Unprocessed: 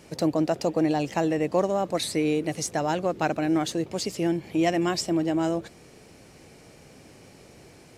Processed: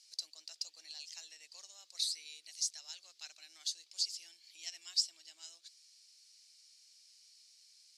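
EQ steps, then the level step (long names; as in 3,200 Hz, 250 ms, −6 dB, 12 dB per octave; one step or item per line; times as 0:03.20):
four-pole ladder band-pass 5,200 Hz, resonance 55%
high-shelf EQ 5,600 Hz +7 dB
+1.5 dB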